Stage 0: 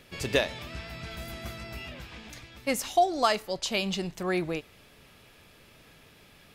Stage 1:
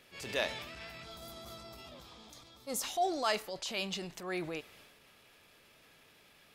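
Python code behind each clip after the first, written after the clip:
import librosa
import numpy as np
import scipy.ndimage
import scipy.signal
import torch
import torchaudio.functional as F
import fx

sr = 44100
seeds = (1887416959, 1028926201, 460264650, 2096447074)

y = fx.transient(x, sr, attack_db=-7, sustain_db=5)
y = fx.spec_box(y, sr, start_s=1.05, length_s=1.78, low_hz=1400.0, high_hz=3100.0, gain_db=-11)
y = fx.low_shelf(y, sr, hz=230.0, db=-10.5)
y = y * librosa.db_to_amplitude(-5.0)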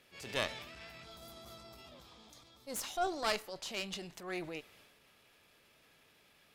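y = fx.cheby_harmonics(x, sr, harmonics=(3, 4), levels_db=(-23, -13), full_scale_db=-16.0)
y = y * librosa.db_to_amplitude(-2.0)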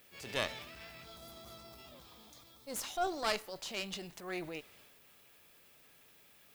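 y = fx.dmg_noise_colour(x, sr, seeds[0], colour='violet', level_db=-65.0)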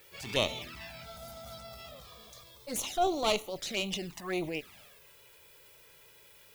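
y = fx.env_flanger(x, sr, rest_ms=2.4, full_db=-37.0)
y = y * librosa.db_to_amplitude(8.5)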